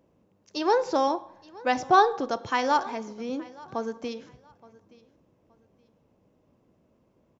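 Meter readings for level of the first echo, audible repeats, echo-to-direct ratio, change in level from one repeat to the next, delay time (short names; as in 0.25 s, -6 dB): -22.5 dB, 2, -22.0 dB, -11.5 dB, 0.872 s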